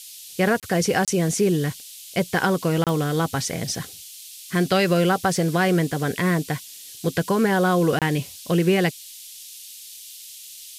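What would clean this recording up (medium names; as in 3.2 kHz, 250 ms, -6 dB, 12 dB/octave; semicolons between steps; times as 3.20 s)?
de-click; interpolate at 0.60/1.05/2.84/7.99 s, 27 ms; noise print and reduce 27 dB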